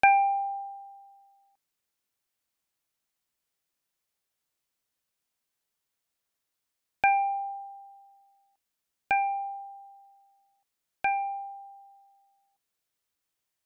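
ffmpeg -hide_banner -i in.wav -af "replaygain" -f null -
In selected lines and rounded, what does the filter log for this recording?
track_gain = +11.9 dB
track_peak = 0.266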